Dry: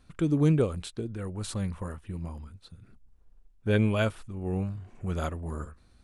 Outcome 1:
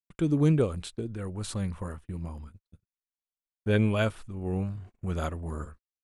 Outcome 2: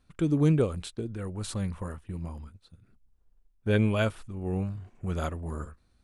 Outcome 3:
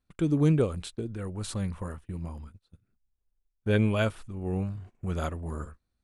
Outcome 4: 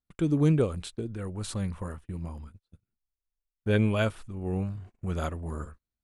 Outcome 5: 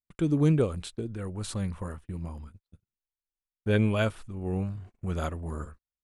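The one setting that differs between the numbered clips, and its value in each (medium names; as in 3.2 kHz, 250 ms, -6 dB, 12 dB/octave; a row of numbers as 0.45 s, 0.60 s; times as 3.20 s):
gate, range: -60 dB, -7 dB, -20 dB, -32 dB, -44 dB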